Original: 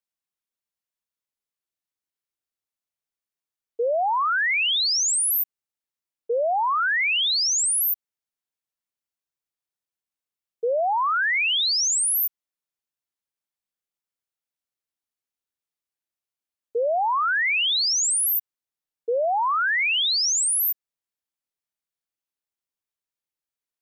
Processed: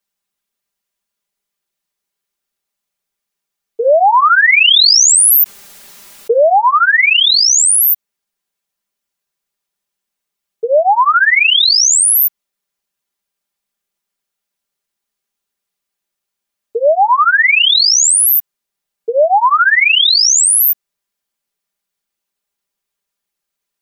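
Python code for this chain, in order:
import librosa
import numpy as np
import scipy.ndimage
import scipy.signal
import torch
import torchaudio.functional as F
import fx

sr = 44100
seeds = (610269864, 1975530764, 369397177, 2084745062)

y = x + 0.97 * np.pad(x, (int(5.0 * sr / 1000.0), 0))[:len(x)]
y = fx.env_flatten(y, sr, amount_pct=70, at=(3.82, 6.55), fade=0.02)
y = y * 10.0 ** (9.0 / 20.0)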